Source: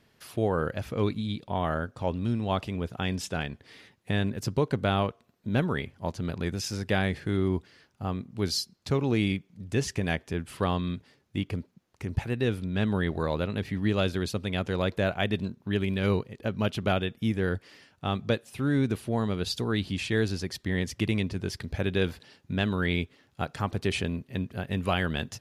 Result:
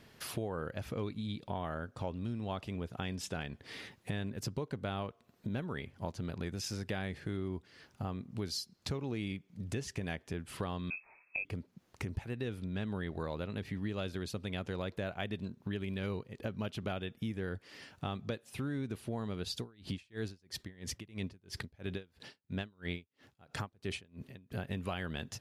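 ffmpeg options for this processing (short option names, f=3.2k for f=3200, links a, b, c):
-filter_complex "[0:a]asettb=1/sr,asplit=3[a][b][c];[a]atrim=end=10.904[d];[b]atrim=start=10.9:end=11.45,asetpts=PTS-STARTPTS,afade=t=in:d=0.004:c=qsin,afade=t=out:st=0.546:d=0.004:c=qsin,lowpass=f=2.3k:t=q:w=0.5098,lowpass=f=2.3k:t=q:w=0.6013,lowpass=f=2.3k:t=q:w=0.9,lowpass=f=2.3k:t=q:w=2.563,afreqshift=-2700[e];[c]atrim=start=11.446[f];[d][e]acrossfade=d=0.004:c1=hsin:c2=qsin[g];[g][f]acrossfade=d=0.004:c1=qsin:c2=hsin,asettb=1/sr,asplit=3[h][i][j];[h]atrim=end=19.594[k];[i]atrim=start=19.59:end=24.52,asetpts=PTS-STARTPTS,afade=t=in:d=0.004:c=qsin,afade=t=out:st=4.926:d=0.004:c=qsin,aeval=exprs='val(0)*pow(10,-36*(0.5-0.5*cos(2*PI*3*n/s))/20)':c=same[l];[j]atrim=start=24.516[m];[k][l]acrossfade=d=0.004:c1=hsin:c2=qsin[n];[n][m]acrossfade=d=0.004:c1=qsin:c2=hsin,acompressor=threshold=-43dB:ratio=4,volume=5dB"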